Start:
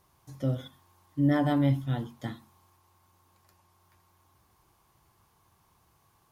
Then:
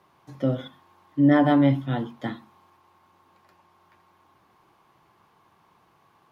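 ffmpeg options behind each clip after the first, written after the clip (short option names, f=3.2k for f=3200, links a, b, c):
-filter_complex "[0:a]acrossover=split=150 3800:gain=0.126 1 0.158[a][b][c];[a][b][c]amix=inputs=3:normalize=0,volume=8dB"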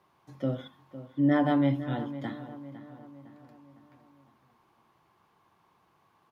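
-filter_complex "[0:a]asplit=2[a][b];[b]adelay=507,lowpass=f=2.6k:p=1,volume=-13.5dB,asplit=2[c][d];[d]adelay=507,lowpass=f=2.6k:p=1,volume=0.51,asplit=2[e][f];[f]adelay=507,lowpass=f=2.6k:p=1,volume=0.51,asplit=2[g][h];[h]adelay=507,lowpass=f=2.6k:p=1,volume=0.51,asplit=2[i][j];[j]adelay=507,lowpass=f=2.6k:p=1,volume=0.51[k];[a][c][e][g][i][k]amix=inputs=6:normalize=0,volume=-6dB"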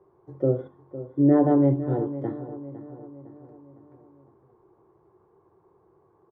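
-af "firequalizer=gain_entry='entry(110,0);entry(240,-10);entry(380,11);entry(600,-4);entry(2800,-30)':delay=0.05:min_phase=1,volume=8dB"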